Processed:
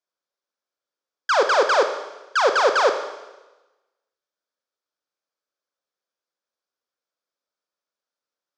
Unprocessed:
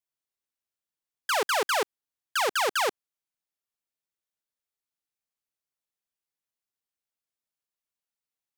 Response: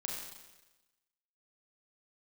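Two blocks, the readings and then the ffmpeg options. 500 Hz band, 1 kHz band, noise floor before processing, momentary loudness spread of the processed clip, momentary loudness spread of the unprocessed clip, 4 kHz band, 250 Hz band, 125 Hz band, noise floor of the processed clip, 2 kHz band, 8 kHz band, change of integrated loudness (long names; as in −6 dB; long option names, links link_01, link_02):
+11.0 dB, +8.0 dB, below −85 dBFS, 15 LU, 8 LU, +3.0 dB, +6.5 dB, can't be measured, below −85 dBFS, +6.5 dB, −1.0 dB, +7.5 dB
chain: -filter_complex "[0:a]highpass=330,equalizer=frequency=540:width_type=q:width=4:gain=6,equalizer=frequency=810:width_type=q:width=4:gain=-4,equalizer=frequency=1400:width_type=q:width=4:gain=3,equalizer=frequency=2000:width_type=q:width=4:gain=-8,equalizer=frequency=2800:width_type=q:width=4:gain=-10,equalizer=frequency=4000:width_type=q:width=4:gain=-5,lowpass=frequency=5400:width=0.5412,lowpass=frequency=5400:width=1.3066,asplit=2[link_01][link_02];[1:a]atrim=start_sample=2205[link_03];[link_02][link_03]afir=irnorm=-1:irlink=0,volume=-2dB[link_04];[link_01][link_04]amix=inputs=2:normalize=0,volume=4dB"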